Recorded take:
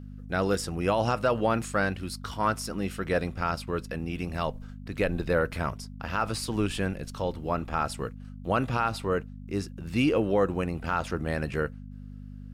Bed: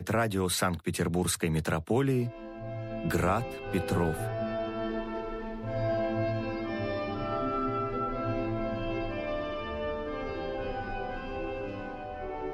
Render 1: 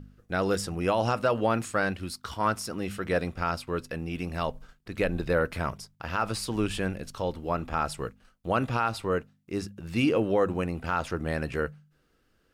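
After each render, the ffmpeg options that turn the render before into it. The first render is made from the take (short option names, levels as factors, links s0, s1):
-af "bandreject=f=50:t=h:w=4,bandreject=f=100:t=h:w=4,bandreject=f=150:t=h:w=4,bandreject=f=200:t=h:w=4,bandreject=f=250:t=h:w=4"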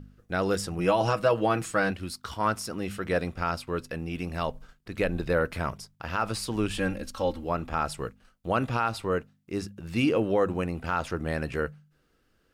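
-filter_complex "[0:a]asettb=1/sr,asplit=3[s0][s1][s2];[s0]atrim=end=0.784[s3];[s1]atrim=start=0.78:end=1.91,asetpts=PTS-STARTPTS,afade=t=in:d=0.004:c=qsin,afade=t=out:st=1.126:d=0.004:c=qsin,aecho=1:1:6.2:0.62,atrim=end_sample=49833[s4];[s2]atrim=start=1.906[s5];[s3][s4]acrossfade=d=0.004:c1=hsin:c2=qsin[s6];[s6][s5]acrossfade=d=0.004:c1=qsin:c2=hsin,asettb=1/sr,asplit=3[s7][s8][s9];[s7]atrim=end=6.784[s10];[s8]atrim=start=6.78:end=7.44,asetpts=PTS-STARTPTS,afade=t=in:d=0.004:c=qsin,afade=t=out:st=0.656:d=0.004:c=qsin,aecho=1:1:3.7:0.8,atrim=end_sample=29106[s11];[s9]atrim=start=7.436[s12];[s10][s11]acrossfade=d=0.004:c1=hsin:c2=qsin[s13];[s13][s12]acrossfade=d=0.004:c1=qsin:c2=hsin"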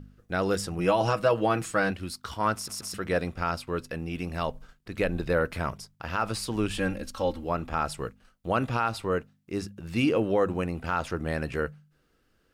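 -filter_complex "[0:a]asplit=4[s0][s1][s2][s3];[s0]atrim=end=2.682[s4];[s1]atrim=start=2.548:end=2.682[s5];[s2]atrim=start=2.548:end=2.682[s6];[s3]atrim=start=2.938[s7];[s4][s5]acrossfade=d=0.004:c1=hsin:c2=hsin[s8];[s8][s6]acrossfade=d=0.004:c1=hsin:c2=hsin[s9];[s9][s7]acrossfade=d=0.004:c1=hsin:c2=hsin"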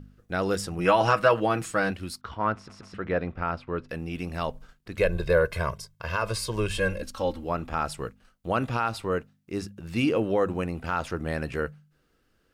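-filter_complex "[0:a]asettb=1/sr,asplit=3[s0][s1][s2];[s0]atrim=end=0.854[s3];[s1]atrim=start=0.85:end=1.4,asetpts=PTS-STARTPTS,afade=t=in:d=0.004:c=qsin,afade=t=out:st=0.546:d=0.004:c=qsin,equalizer=f=1600:w=0.78:g=8.5[s4];[s2]atrim=start=1.396[s5];[s3][s4]acrossfade=d=0.004:c1=hsin:c2=qsin[s6];[s6][s5]acrossfade=d=0.004:c1=qsin:c2=hsin,asettb=1/sr,asplit=3[s7][s8][s9];[s7]atrim=end=2.214[s10];[s8]atrim=start=2.21:end=3.89,asetpts=PTS-STARTPTS,afade=t=in:d=0.004:c=qsin,afade=t=out:st=1.676:d=0.004:c=qsin,lowpass=2300[s11];[s9]atrim=start=3.886[s12];[s10][s11]acrossfade=d=0.004:c1=hsin:c2=qsin[s13];[s13][s12]acrossfade=d=0.004:c1=qsin:c2=hsin,asettb=1/sr,asplit=3[s14][s15][s16];[s14]atrim=end=4.974[s17];[s15]atrim=start=4.97:end=7.02,asetpts=PTS-STARTPTS,afade=t=in:d=0.004:c=qsin,afade=t=out:st=2.046:d=0.004:c=qsin,aecho=1:1:1.9:0.83,atrim=end_sample=90405[s18];[s16]atrim=start=7.016[s19];[s17][s18]acrossfade=d=0.004:c1=hsin:c2=qsin[s20];[s20][s19]acrossfade=d=0.004:c1=qsin:c2=hsin"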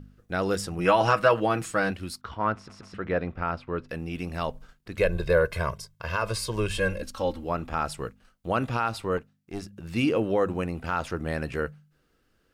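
-filter_complex "[0:a]asettb=1/sr,asplit=3[s0][s1][s2];[s0]atrim=end=9.174[s3];[s1]atrim=start=9.17:end=9.73,asetpts=PTS-STARTPTS,afade=t=in:d=0.004:c=qsin,afade=t=out:st=0.556:d=0.004:c=qsin,aeval=exprs='(tanh(14.1*val(0)+0.7)-tanh(0.7))/14.1':c=same[s4];[s2]atrim=start=9.726[s5];[s3][s4]acrossfade=d=0.004:c1=hsin:c2=qsin[s6];[s6][s5]acrossfade=d=0.004:c1=qsin:c2=hsin"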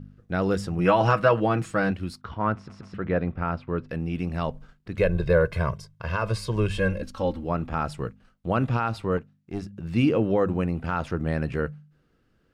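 -af "lowpass=f=3400:p=1,equalizer=f=140:t=o:w=1.9:g=7"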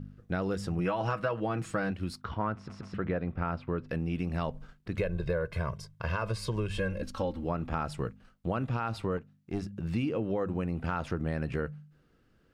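-af "acompressor=threshold=0.0398:ratio=6"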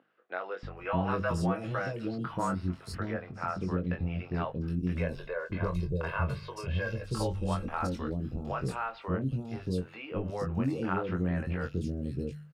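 -filter_complex "[0:a]asplit=2[s0][s1];[s1]adelay=22,volume=0.562[s2];[s0][s2]amix=inputs=2:normalize=0,acrossover=split=470|3500[s3][s4][s5];[s3]adelay=630[s6];[s5]adelay=770[s7];[s6][s4][s7]amix=inputs=3:normalize=0"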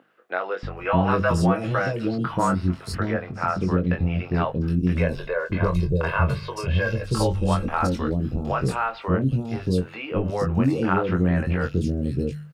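-af "volume=2.99"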